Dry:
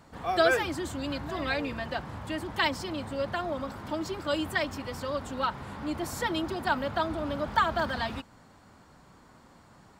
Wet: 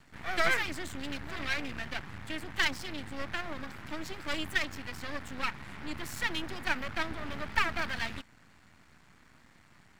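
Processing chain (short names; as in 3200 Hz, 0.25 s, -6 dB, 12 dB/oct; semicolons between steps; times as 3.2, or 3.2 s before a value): half-wave rectifier; ten-band EQ 500 Hz -7 dB, 1000 Hz -4 dB, 2000 Hz +7 dB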